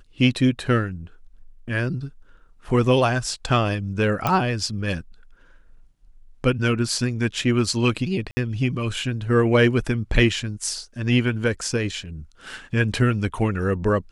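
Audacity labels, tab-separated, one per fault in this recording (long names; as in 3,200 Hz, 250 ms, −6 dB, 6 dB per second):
4.270000	4.270000	click −8 dBFS
8.310000	8.370000	drop-out 60 ms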